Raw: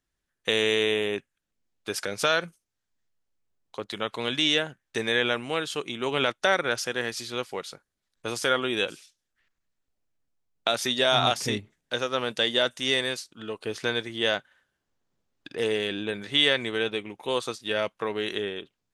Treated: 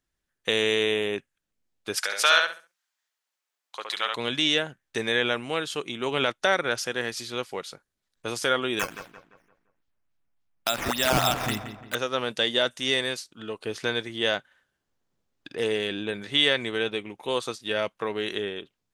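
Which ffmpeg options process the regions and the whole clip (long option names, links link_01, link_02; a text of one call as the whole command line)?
ffmpeg -i in.wav -filter_complex "[0:a]asettb=1/sr,asplit=3[link_01][link_02][link_03];[link_01]atrim=end=1.974[link_04];[link_02]atrim=start=1.97:end=4.15,asetpts=PTS-STARTPTS,afade=type=in:duration=0.004:curve=qsin,afade=type=out:start_time=2.176:duration=0.004:curve=qsin,highpass=1000,asplit=2[link_05][link_06];[link_06]adelay=68,lowpass=frequency=4700:poles=1,volume=-3.5dB,asplit=2[link_07][link_08];[link_08]adelay=68,lowpass=frequency=4700:poles=1,volume=0.26,asplit=2[link_09][link_10];[link_10]adelay=68,lowpass=frequency=4700:poles=1,volume=0.26,asplit=2[link_11][link_12];[link_12]adelay=68,lowpass=frequency=4700:poles=1,volume=0.26[link_13];[link_05][link_07][link_09][link_11][link_13]amix=inputs=5:normalize=0,atrim=end_sample=96138,acontrast=42[link_14];[link_03]atrim=start=4.146[link_15];[link_04][link_14]acrossfade=duration=0.004:curve1=hsin:curve2=qsin[link_16];[link_16][link_15]acrossfade=duration=0.004:curve1=qsin:curve2=hsin,asettb=1/sr,asplit=3[link_17][link_18][link_19];[link_17]atrim=end=8.794[link_20];[link_18]atrim=start=8.79:end=11.95,asetpts=PTS-STARTPTS,afade=type=in:duration=0.004:curve=qsin,afade=type=out:start_time=3.156:duration=0.004:curve=qsin,equalizer=frequency=450:width=2.4:gain=-11,acrusher=samples=8:mix=1:aa=0.000001:lfo=1:lforange=8:lforate=3.5,asplit=2[link_21][link_22];[link_22]adelay=172,lowpass=frequency=2400:poles=1,volume=-9.5dB,asplit=2[link_23][link_24];[link_24]adelay=172,lowpass=frequency=2400:poles=1,volume=0.42,asplit=2[link_25][link_26];[link_26]adelay=172,lowpass=frequency=2400:poles=1,volume=0.42,asplit=2[link_27][link_28];[link_28]adelay=172,lowpass=frequency=2400:poles=1,volume=0.42,asplit=2[link_29][link_30];[link_30]adelay=172,lowpass=frequency=2400:poles=1,volume=0.42[link_31];[link_21][link_23][link_25][link_27][link_29][link_31]amix=inputs=6:normalize=0,atrim=end_sample=139356[link_32];[link_19]atrim=start=11.946[link_33];[link_20][link_32]acrossfade=duration=0.004:curve1=hsin:curve2=qsin[link_34];[link_34][link_33]acrossfade=duration=0.004:curve1=qsin:curve2=hsin" out.wav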